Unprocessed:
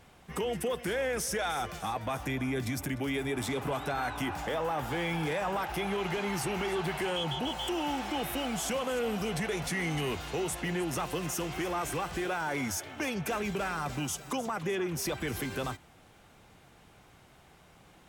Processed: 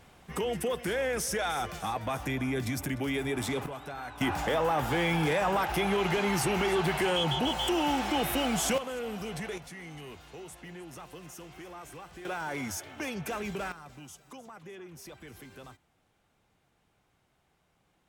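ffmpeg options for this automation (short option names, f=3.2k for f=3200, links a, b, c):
-af "asetnsamples=n=441:p=0,asendcmd='3.66 volume volume -7.5dB;4.21 volume volume 4.5dB;8.78 volume volume -4.5dB;9.58 volume volume -12.5dB;12.25 volume volume -2.5dB;13.72 volume volume -14dB',volume=1dB"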